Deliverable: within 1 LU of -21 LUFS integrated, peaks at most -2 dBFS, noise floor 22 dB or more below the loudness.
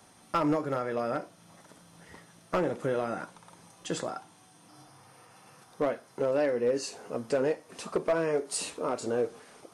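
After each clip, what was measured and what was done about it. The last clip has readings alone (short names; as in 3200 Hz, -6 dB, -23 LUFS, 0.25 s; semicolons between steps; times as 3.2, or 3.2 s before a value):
clipped 0.5%; flat tops at -20.0 dBFS; loudness -31.0 LUFS; peak -20.0 dBFS; loudness target -21.0 LUFS
-> clip repair -20 dBFS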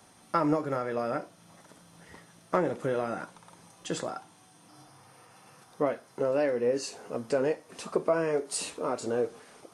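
clipped 0.0%; loudness -31.0 LUFS; peak -11.0 dBFS; loudness target -21.0 LUFS
-> gain +10 dB; limiter -2 dBFS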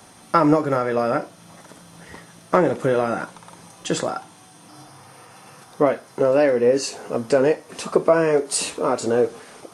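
loudness -21.0 LUFS; peak -2.0 dBFS; noise floor -48 dBFS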